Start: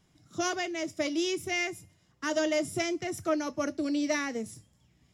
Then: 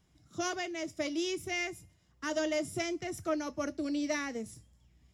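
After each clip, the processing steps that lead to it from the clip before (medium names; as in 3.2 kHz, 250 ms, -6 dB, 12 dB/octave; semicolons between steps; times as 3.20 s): peaking EQ 61 Hz +13.5 dB 0.52 oct; trim -4 dB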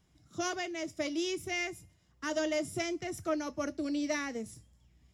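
no audible change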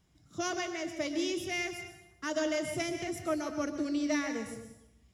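plate-style reverb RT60 0.84 s, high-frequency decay 0.9×, pre-delay 105 ms, DRR 7 dB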